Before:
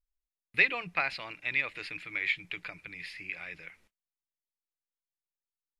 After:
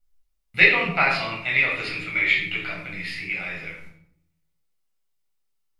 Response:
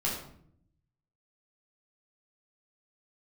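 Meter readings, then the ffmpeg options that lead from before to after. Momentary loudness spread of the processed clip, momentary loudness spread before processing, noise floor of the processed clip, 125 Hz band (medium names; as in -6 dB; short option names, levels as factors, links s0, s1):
16 LU, 16 LU, -72 dBFS, +16.0 dB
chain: -filter_complex "[0:a]bandreject=f=1600:w=24,bandreject=f=140.8:t=h:w=4,bandreject=f=281.6:t=h:w=4,bandreject=f=422.4:t=h:w=4,bandreject=f=563.2:t=h:w=4,bandreject=f=704:t=h:w=4,bandreject=f=844.8:t=h:w=4,bandreject=f=985.6:t=h:w=4,bandreject=f=1126.4:t=h:w=4,bandreject=f=1267.2:t=h:w=4,bandreject=f=1408:t=h:w=4,bandreject=f=1548.8:t=h:w=4,bandreject=f=1689.6:t=h:w=4,bandreject=f=1830.4:t=h:w=4,bandreject=f=1971.2:t=h:w=4,bandreject=f=2112:t=h:w=4,bandreject=f=2252.8:t=h:w=4,bandreject=f=2393.6:t=h:w=4,bandreject=f=2534.4:t=h:w=4,bandreject=f=2675.2:t=h:w=4,bandreject=f=2816:t=h:w=4,bandreject=f=2956.8:t=h:w=4,bandreject=f=3097.6:t=h:w=4,bandreject=f=3238.4:t=h:w=4,bandreject=f=3379.2:t=h:w=4,bandreject=f=3520:t=h:w=4,bandreject=f=3660.8:t=h:w=4,bandreject=f=3801.6:t=h:w=4,bandreject=f=3942.4:t=h:w=4,bandreject=f=4083.2:t=h:w=4,bandreject=f=4224:t=h:w=4,bandreject=f=4364.8:t=h:w=4,bandreject=f=4505.6:t=h:w=4,bandreject=f=4646.4:t=h:w=4,bandreject=f=4787.2:t=h:w=4,bandreject=f=4928:t=h:w=4[s0];[1:a]atrim=start_sample=2205[s1];[s0][s1]afir=irnorm=-1:irlink=0,volume=1.78"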